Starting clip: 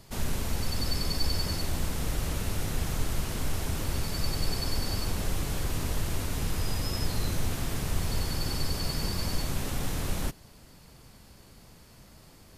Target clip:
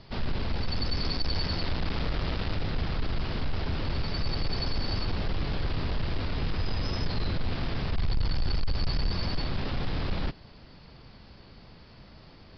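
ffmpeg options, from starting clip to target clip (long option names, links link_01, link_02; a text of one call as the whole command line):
ffmpeg -i in.wav -filter_complex "[0:a]asettb=1/sr,asplit=3[link_01][link_02][link_03];[link_01]atrim=end=1.004[link_04];[link_02]atrim=start=1:end=2.55,asetpts=PTS-STARTPTS,afade=type=in:duration=0.004:curve=qsin,afade=type=out:start_time=1.546:duration=0.004:curve=qsin,acrusher=bits=4:mix=0:aa=0.5[link_05];[link_03]atrim=start=2.546[link_06];[link_04][link_05]acrossfade=duration=0.004:curve1=hsin:curve2=qsin[link_07];[link_07][link_06]acrossfade=duration=0.004:curve1=qsin:curve2=hsin,asplit=3[link_08][link_09][link_10];[link_08]afade=type=out:start_time=7.95:duration=0.02[link_11];[link_09]asubboost=boost=2:cutoff=110,afade=type=in:start_time=7.95:duration=0.02,afade=type=out:start_time=9.11:duration=0.02[link_12];[link_10]afade=type=in:start_time=9.11:duration=0.02[link_13];[link_11][link_12][link_13]amix=inputs=3:normalize=0,asoftclip=type=tanh:threshold=-24dB,aresample=11025,aresample=44100,volume=3dB" out.wav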